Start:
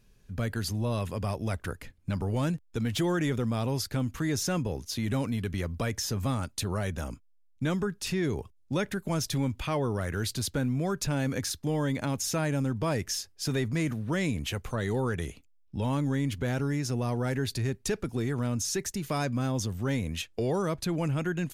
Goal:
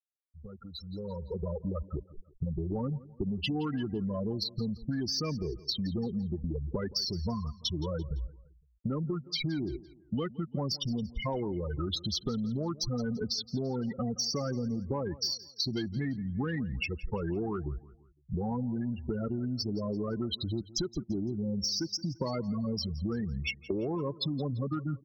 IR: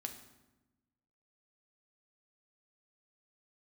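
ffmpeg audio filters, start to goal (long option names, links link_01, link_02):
-filter_complex "[0:a]highshelf=frequency=3200:gain=10,asoftclip=type=hard:threshold=-20dB,afftfilt=real='re*gte(hypot(re,im),0.1)':imag='im*gte(hypot(re,im),0.1)':win_size=1024:overlap=0.75,aresample=16000,aresample=44100,asetrate=37926,aresample=44100,asoftclip=type=tanh:threshold=-17.5dB,equalizer=frequency=100:width_type=o:width=0.67:gain=-10,equalizer=frequency=1600:width_type=o:width=0.67:gain=-5,equalizer=frequency=6300:width_type=o:width=0.67:gain=-4,acompressor=threshold=-38dB:ratio=12,asplit=2[link_01][link_02];[link_02]aecho=0:1:170|340|510:0.112|0.046|0.0189[link_03];[link_01][link_03]amix=inputs=2:normalize=0,dynaudnorm=framelen=750:gausssize=3:maxgain=15.5dB,volume=-7dB"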